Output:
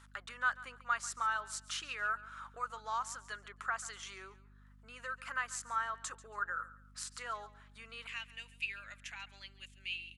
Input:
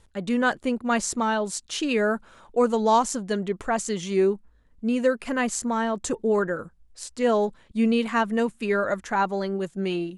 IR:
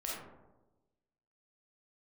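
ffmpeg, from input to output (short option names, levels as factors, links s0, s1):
-af "acompressor=threshold=0.00794:ratio=2.5,asetnsamples=n=441:p=0,asendcmd='8.07 highpass f 2600',highpass=f=1300:t=q:w=4.3,aeval=exprs='val(0)+0.00112*(sin(2*PI*50*n/s)+sin(2*PI*2*50*n/s)/2+sin(2*PI*3*50*n/s)/3+sin(2*PI*4*50*n/s)/4+sin(2*PI*5*50*n/s)/5)':c=same,aecho=1:1:140|280:0.119|0.0333,volume=0.891"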